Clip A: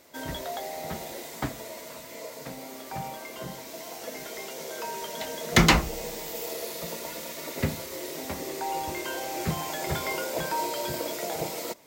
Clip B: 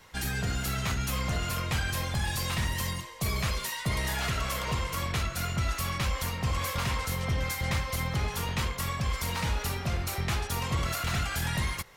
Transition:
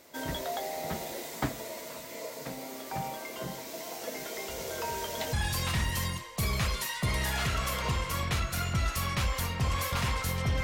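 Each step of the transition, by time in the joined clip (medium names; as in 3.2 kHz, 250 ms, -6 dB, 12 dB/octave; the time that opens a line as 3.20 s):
clip A
4.49 s: add clip B from 1.32 s 0.84 s -17.5 dB
5.33 s: go over to clip B from 2.16 s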